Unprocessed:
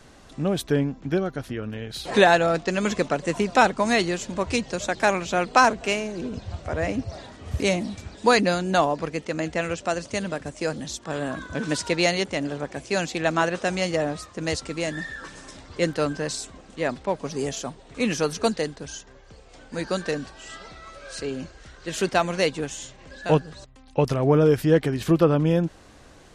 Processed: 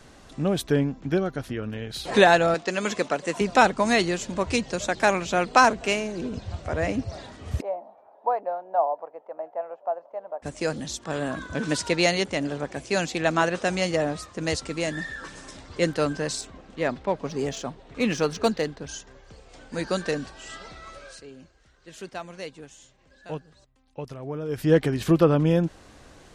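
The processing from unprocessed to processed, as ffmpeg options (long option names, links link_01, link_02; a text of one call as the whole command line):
ffmpeg -i in.wav -filter_complex "[0:a]asettb=1/sr,asplit=3[link_01][link_02][link_03];[link_01]atrim=end=2.544[link_04];[link_02]atrim=start=2.54:end=3.41,asetpts=PTS-STARTPTS,afade=type=in:duration=0.004:curve=qsin,afade=type=out:start_time=0.866:duration=0.004:curve=qsin,highpass=frequency=340:poles=1[link_05];[link_03]atrim=start=3.406[link_06];[link_04][link_05]acrossfade=duration=0.004:curve1=hsin:curve2=qsin[link_07];[link_07][link_06]acrossfade=duration=0.004:curve1=qsin:curve2=hsin,asplit=3[link_08][link_09][link_10];[link_08]afade=type=out:start_time=7.6:duration=0.02[link_11];[link_09]asuperpass=centerf=740:order=4:qfactor=2,afade=type=in:start_time=7.6:duration=0.02,afade=type=out:start_time=10.42:duration=0.02[link_12];[link_10]afade=type=in:start_time=10.42:duration=0.02[link_13];[link_11][link_12][link_13]amix=inputs=3:normalize=0,asettb=1/sr,asplit=3[link_14][link_15][link_16];[link_14]atrim=end=16.414[link_17];[link_15]atrim=start=16.41:end=18.89,asetpts=PTS-STARTPTS,afade=type=in:duration=0.004:curve=qsin,afade=type=out:start_time=2.476:duration=0.004:curve=qsin,adynamicsmooth=sensitivity=3:basefreq=5100[link_18];[link_16]atrim=start=18.886[link_19];[link_17][link_18]acrossfade=duration=0.004:curve1=hsin:curve2=qsin[link_20];[link_20][link_19]acrossfade=duration=0.004:curve1=qsin:curve2=hsin,asplit=3[link_21][link_22][link_23];[link_21]atrim=end=21.21,asetpts=PTS-STARTPTS,afade=type=out:start_time=20.97:duration=0.24:silence=0.188365[link_24];[link_22]atrim=start=21.21:end=24.48,asetpts=PTS-STARTPTS,volume=-14.5dB[link_25];[link_23]atrim=start=24.48,asetpts=PTS-STARTPTS,afade=type=in:duration=0.24:silence=0.188365[link_26];[link_24][link_25][link_26]concat=n=3:v=0:a=1" out.wav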